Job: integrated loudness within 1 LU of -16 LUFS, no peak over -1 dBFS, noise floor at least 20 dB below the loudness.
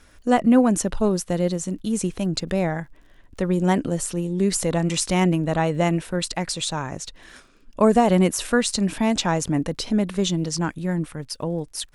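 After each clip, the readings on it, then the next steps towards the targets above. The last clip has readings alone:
ticks 35/s; loudness -22.5 LUFS; peak -4.0 dBFS; loudness target -16.0 LUFS
-> de-click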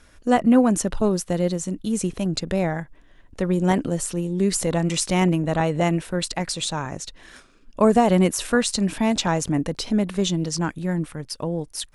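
ticks 0.084/s; loudness -22.5 LUFS; peak -4.0 dBFS; loudness target -16.0 LUFS
-> gain +6.5 dB; limiter -1 dBFS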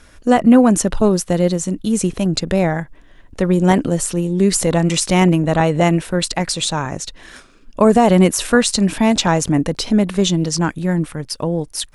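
loudness -16.5 LUFS; peak -1.0 dBFS; noise floor -46 dBFS

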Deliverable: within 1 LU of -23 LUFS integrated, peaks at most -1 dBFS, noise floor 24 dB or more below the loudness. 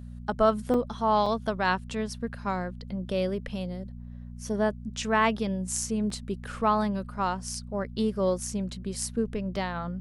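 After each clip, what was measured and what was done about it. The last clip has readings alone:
dropouts 4; longest dropout 3.2 ms; hum 60 Hz; harmonics up to 240 Hz; hum level -38 dBFS; loudness -29.0 LUFS; peak -10.5 dBFS; loudness target -23.0 LUFS
-> interpolate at 0.74/1.26/6.1/9.56, 3.2 ms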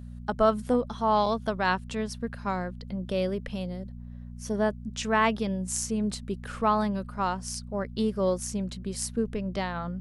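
dropouts 0; hum 60 Hz; harmonics up to 240 Hz; hum level -38 dBFS
-> de-hum 60 Hz, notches 4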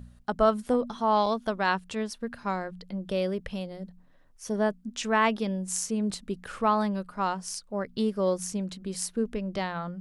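hum none; loudness -29.0 LUFS; peak -10.5 dBFS; loudness target -23.0 LUFS
-> gain +6 dB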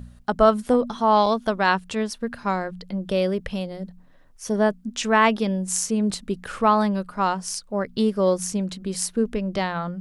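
loudness -23.0 LUFS; peak -4.5 dBFS; noise floor -50 dBFS

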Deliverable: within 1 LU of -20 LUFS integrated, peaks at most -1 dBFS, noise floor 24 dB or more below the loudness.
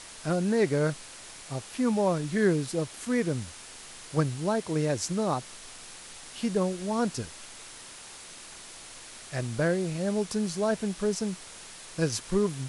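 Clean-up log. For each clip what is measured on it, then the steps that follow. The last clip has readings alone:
noise floor -46 dBFS; noise floor target -53 dBFS; loudness -29.0 LUFS; peak -12.5 dBFS; loudness target -20.0 LUFS
-> denoiser 7 dB, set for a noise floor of -46 dBFS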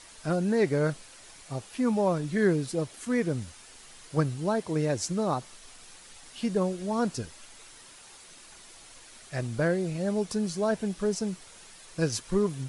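noise floor -51 dBFS; noise floor target -53 dBFS
-> denoiser 6 dB, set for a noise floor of -51 dBFS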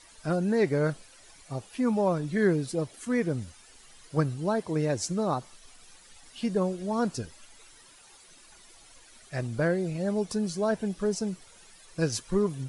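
noise floor -55 dBFS; loudness -29.0 LUFS; peak -13.0 dBFS; loudness target -20.0 LUFS
-> gain +9 dB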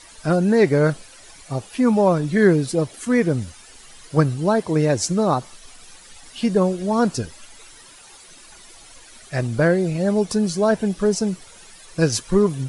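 loudness -20.0 LUFS; peak -4.0 dBFS; noise floor -46 dBFS

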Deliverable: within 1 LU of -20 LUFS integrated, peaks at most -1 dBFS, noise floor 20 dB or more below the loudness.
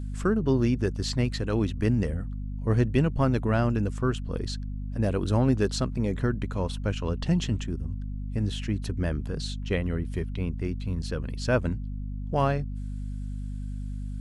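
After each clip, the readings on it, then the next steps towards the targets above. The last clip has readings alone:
hum 50 Hz; harmonics up to 250 Hz; hum level -31 dBFS; loudness -28.5 LUFS; peak -9.5 dBFS; loudness target -20.0 LUFS
-> notches 50/100/150/200/250 Hz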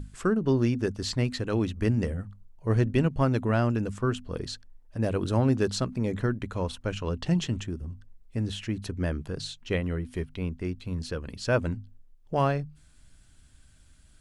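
hum none; loudness -29.0 LUFS; peak -11.5 dBFS; loudness target -20.0 LUFS
-> gain +9 dB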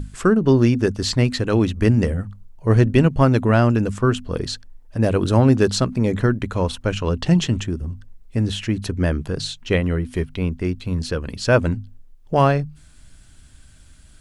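loudness -20.0 LUFS; peak -2.5 dBFS; noise floor -48 dBFS

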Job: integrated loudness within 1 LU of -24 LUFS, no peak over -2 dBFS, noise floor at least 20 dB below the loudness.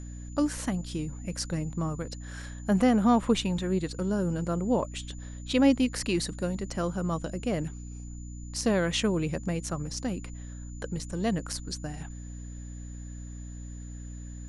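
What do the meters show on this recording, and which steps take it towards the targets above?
hum 60 Hz; harmonics up to 300 Hz; hum level -38 dBFS; steady tone 7000 Hz; tone level -52 dBFS; loudness -29.5 LUFS; peak -10.5 dBFS; loudness target -24.0 LUFS
-> notches 60/120/180/240/300 Hz; notch 7000 Hz, Q 30; gain +5.5 dB

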